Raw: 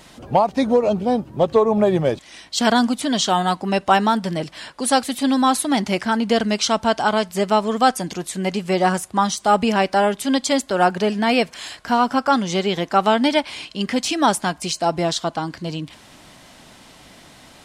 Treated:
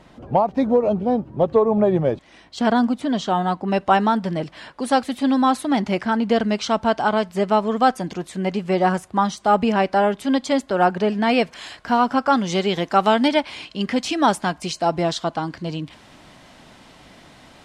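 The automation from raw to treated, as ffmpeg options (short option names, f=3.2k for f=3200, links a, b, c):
-af "asetnsamples=n=441:p=0,asendcmd='3.68 lowpass f 2000;11.22 lowpass f 3200;12.44 lowpass f 7300;13.28 lowpass f 3500',lowpass=f=1.1k:p=1"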